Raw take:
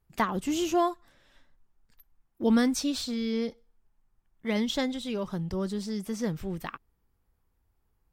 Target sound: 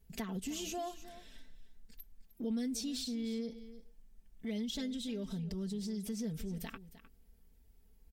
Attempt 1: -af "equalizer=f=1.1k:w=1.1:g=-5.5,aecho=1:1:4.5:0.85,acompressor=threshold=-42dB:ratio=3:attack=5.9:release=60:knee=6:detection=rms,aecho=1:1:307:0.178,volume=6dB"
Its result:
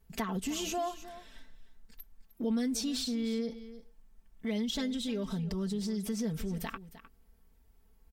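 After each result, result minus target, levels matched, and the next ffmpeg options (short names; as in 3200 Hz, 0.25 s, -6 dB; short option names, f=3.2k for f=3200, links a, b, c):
compressor: peak gain reduction -4.5 dB; 1000 Hz band +3.0 dB
-af "equalizer=f=1.1k:w=1.1:g=-5.5,aecho=1:1:4.5:0.85,acompressor=threshold=-49dB:ratio=3:attack=5.9:release=60:knee=6:detection=rms,aecho=1:1:307:0.178,volume=6dB"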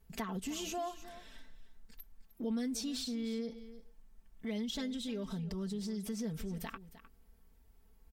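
1000 Hz band +3.0 dB
-af "equalizer=f=1.1k:w=1.1:g=-15,aecho=1:1:4.5:0.85,acompressor=threshold=-49dB:ratio=3:attack=5.9:release=60:knee=6:detection=rms,aecho=1:1:307:0.178,volume=6dB"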